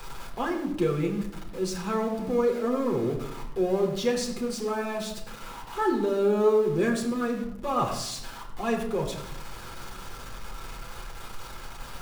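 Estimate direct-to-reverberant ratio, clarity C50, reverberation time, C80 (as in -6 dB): -0.5 dB, 7.5 dB, 0.80 s, 9.0 dB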